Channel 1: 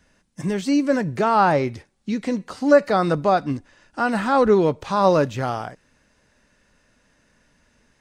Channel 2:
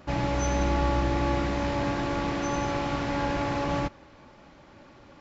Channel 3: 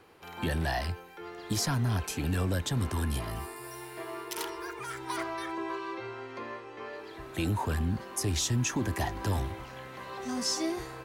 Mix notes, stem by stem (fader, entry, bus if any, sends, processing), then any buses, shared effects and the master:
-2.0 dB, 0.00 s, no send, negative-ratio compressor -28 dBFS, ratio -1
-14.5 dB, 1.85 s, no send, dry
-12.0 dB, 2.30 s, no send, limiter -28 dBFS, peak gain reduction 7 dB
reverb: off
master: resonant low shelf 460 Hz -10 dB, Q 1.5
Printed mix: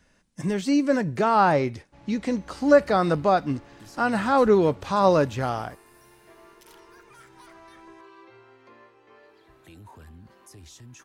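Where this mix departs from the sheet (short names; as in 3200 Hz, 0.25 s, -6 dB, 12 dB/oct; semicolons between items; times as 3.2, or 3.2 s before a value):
stem 1: missing negative-ratio compressor -28 dBFS, ratio -1; stem 2 -14.5 dB -> -24.0 dB; master: missing resonant low shelf 460 Hz -10 dB, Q 1.5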